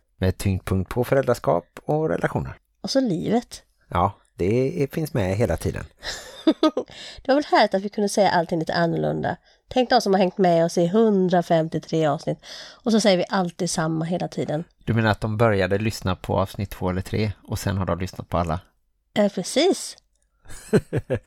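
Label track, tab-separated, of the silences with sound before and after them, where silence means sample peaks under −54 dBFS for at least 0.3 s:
18.690000	19.150000	silence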